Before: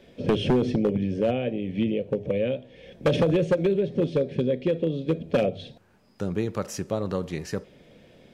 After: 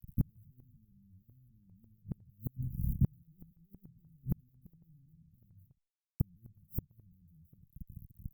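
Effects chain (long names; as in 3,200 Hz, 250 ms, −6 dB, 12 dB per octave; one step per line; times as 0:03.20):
fuzz pedal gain 45 dB, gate −46 dBFS
inverse Chebyshev band-stop filter 730–4,300 Hz, stop band 80 dB
gate with flip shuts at −19 dBFS, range −40 dB
level +2 dB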